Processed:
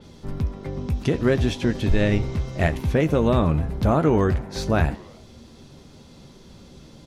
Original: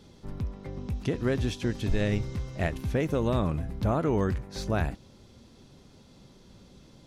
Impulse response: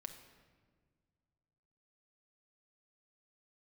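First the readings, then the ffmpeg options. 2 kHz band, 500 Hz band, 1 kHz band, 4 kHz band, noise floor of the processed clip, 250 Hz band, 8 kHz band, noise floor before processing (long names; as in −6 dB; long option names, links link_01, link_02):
+7.5 dB, +7.5 dB, +7.5 dB, +6.5 dB, −48 dBFS, +7.5 dB, +5.0 dB, −55 dBFS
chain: -filter_complex "[0:a]asplit=2[link_01][link_02];[link_02]adelay=13,volume=-11dB[link_03];[link_01][link_03]amix=inputs=2:normalize=0,asplit=5[link_04][link_05][link_06][link_07][link_08];[link_05]adelay=87,afreqshift=140,volume=-23dB[link_09];[link_06]adelay=174,afreqshift=280,volume=-27.7dB[link_10];[link_07]adelay=261,afreqshift=420,volume=-32.5dB[link_11];[link_08]adelay=348,afreqshift=560,volume=-37.2dB[link_12];[link_04][link_09][link_10][link_11][link_12]amix=inputs=5:normalize=0,adynamicequalizer=threshold=0.00224:dfrequency=4500:dqfactor=0.7:tfrequency=4500:tqfactor=0.7:attack=5:release=100:ratio=0.375:range=3:mode=cutabove:tftype=highshelf,volume=7dB"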